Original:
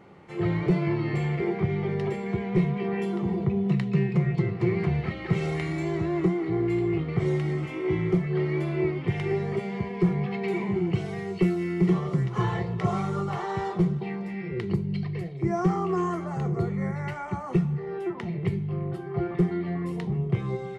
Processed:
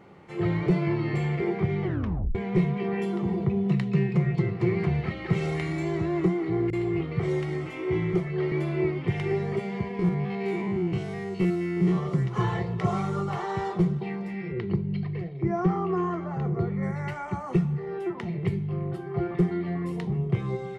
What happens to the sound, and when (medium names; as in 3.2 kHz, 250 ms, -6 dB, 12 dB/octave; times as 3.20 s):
1.83 s: tape stop 0.52 s
6.70–8.52 s: bands offset in time lows, highs 30 ms, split 210 Hz
9.99–11.98 s: spectrogram pixelated in time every 50 ms
14.52–16.83 s: distance through air 190 m